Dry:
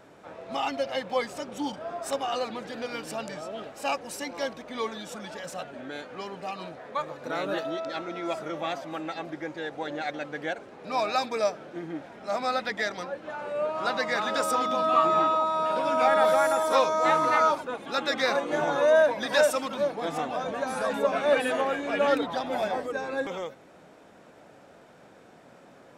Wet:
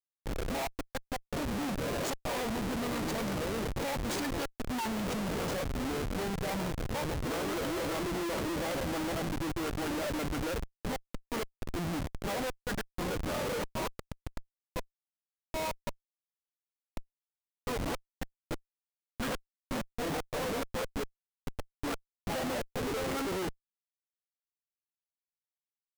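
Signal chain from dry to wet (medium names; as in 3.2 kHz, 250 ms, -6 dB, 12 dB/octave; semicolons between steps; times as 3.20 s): formant shift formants -3 st; inverted gate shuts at -18 dBFS, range -35 dB; Schmitt trigger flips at -38 dBFS; trim +2.5 dB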